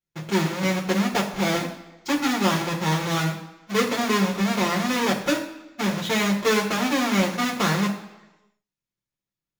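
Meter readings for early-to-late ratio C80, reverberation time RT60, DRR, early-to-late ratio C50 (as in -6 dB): 11.5 dB, 1.0 s, -2.5 dB, 9.0 dB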